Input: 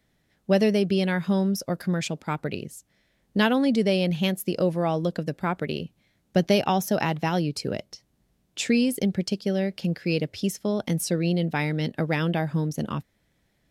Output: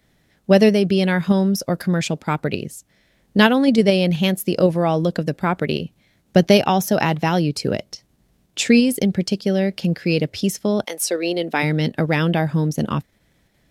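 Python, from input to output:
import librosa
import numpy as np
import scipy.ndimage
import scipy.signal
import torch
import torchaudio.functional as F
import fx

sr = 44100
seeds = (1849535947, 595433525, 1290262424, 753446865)

p1 = fx.highpass(x, sr, hz=fx.line((10.84, 500.0), (11.62, 220.0)), slope=24, at=(10.84, 11.62), fade=0.02)
p2 = fx.level_steps(p1, sr, step_db=10)
p3 = p1 + (p2 * librosa.db_to_amplitude(0.5))
y = p3 * librosa.db_to_amplitude(2.5)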